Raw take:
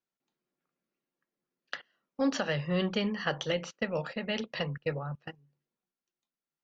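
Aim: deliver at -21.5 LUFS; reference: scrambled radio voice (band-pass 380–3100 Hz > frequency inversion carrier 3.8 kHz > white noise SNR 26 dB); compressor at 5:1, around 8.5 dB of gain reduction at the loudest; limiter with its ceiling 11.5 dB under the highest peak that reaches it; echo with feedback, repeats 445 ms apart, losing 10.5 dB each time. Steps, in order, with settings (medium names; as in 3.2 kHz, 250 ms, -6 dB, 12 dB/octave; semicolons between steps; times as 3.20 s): compression 5:1, threshold -34 dBFS; peak limiter -31 dBFS; band-pass 380–3100 Hz; feedback delay 445 ms, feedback 30%, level -10.5 dB; frequency inversion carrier 3.8 kHz; white noise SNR 26 dB; trim +21.5 dB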